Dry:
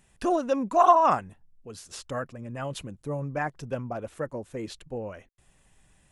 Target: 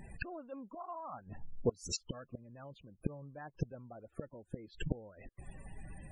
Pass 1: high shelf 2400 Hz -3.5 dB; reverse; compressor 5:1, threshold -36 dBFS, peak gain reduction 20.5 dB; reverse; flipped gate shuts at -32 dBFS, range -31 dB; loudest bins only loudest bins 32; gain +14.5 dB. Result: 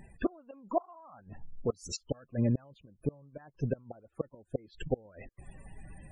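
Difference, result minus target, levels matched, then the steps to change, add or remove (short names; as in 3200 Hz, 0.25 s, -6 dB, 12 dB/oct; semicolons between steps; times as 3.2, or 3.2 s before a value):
compressor: peak gain reduction +8 dB
change: compressor 5:1, threshold -26 dBFS, peak gain reduction 12.5 dB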